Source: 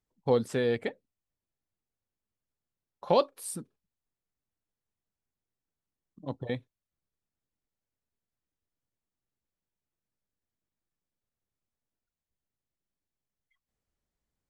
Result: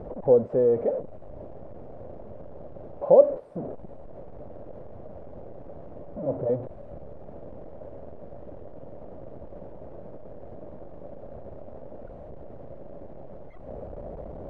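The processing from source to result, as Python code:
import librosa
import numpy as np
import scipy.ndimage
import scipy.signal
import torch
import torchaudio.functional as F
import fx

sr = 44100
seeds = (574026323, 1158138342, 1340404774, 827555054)

y = x + 0.5 * 10.0 ** (-29.0 / 20.0) * np.sign(x)
y = fx.lowpass_res(y, sr, hz=590.0, q=4.9)
y = F.gain(torch.from_numpy(y), -3.0).numpy()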